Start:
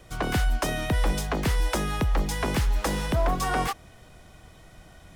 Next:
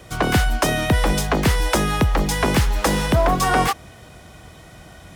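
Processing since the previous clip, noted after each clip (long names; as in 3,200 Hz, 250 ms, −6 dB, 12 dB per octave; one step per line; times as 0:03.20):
high-pass filter 55 Hz
level +8.5 dB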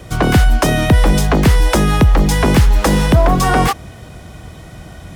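low-shelf EQ 360 Hz +7 dB
in parallel at +1 dB: brickwall limiter −9.5 dBFS, peak gain reduction 7 dB
on the sum: level −2.5 dB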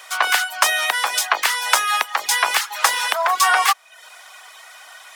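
high-pass filter 920 Hz 24 dB per octave
reverb reduction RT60 0.57 s
level +4 dB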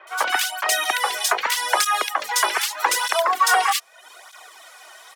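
parametric band 370 Hz +9 dB 1 octave
multiband delay without the direct sound lows, highs 70 ms, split 2,300 Hz
through-zero flanger with one copy inverted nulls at 0.81 Hz, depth 4.3 ms
level +1.5 dB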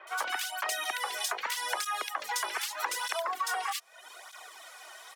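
downward compressor, threshold −26 dBFS, peak gain reduction 12.5 dB
level −4 dB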